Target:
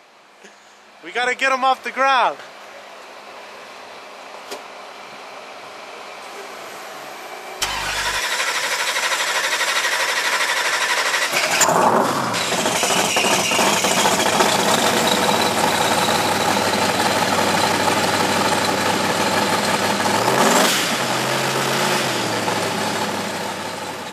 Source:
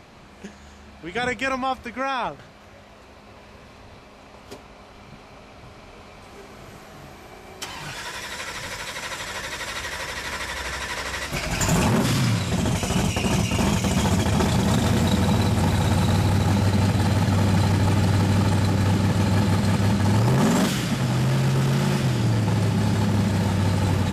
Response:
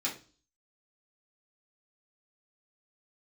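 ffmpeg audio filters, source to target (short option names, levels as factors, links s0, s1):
-filter_complex "[0:a]highpass=490,dynaudnorm=f=410:g=7:m=3.16,asettb=1/sr,asplit=3[s0][s1][s2];[s0]atrim=end=7.614[s3];[s1]atrim=start=7.61:end=8.19,asetpts=PTS-STARTPTS,afade=t=in:d=0.004:c=qsin,afade=t=out:st=0.576:d=0.004:c=qsin,aeval=exprs='val(0)+0.01*(sin(2*PI*50*n/s)+sin(2*PI*2*50*n/s)/2+sin(2*PI*3*50*n/s)/3+sin(2*PI*4*50*n/s)/4+sin(2*PI*5*50*n/s)/5)':c=same[s4];[s2]atrim=start=8.186[s5];[s3][s4]acrossfade=d=0.004:c1=hsin:c2=qsin[s6];[s6][s5]acrossfade=d=0.004:c1=qsin:c2=hsin,asettb=1/sr,asplit=3[s7][s8][s9];[s7]atrim=end=11.644[s10];[s8]atrim=start=11.64:end=12.34,asetpts=PTS-STARTPTS,afade=t=in:d=0.004:c=qsin,afade=t=out:st=0.696:d=0.004:c=qsin,highshelf=f=1600:t=q:w=1.5:g=-10[s11];[s9]atrim=start=12.336[s12];[s10][s11]acrossfade=d=0.004:c1=hsin:c2=qsin[s13];[s13][s12]acrossfade=d=0.004:c1=qsin:c2=hsin,volume=1.26"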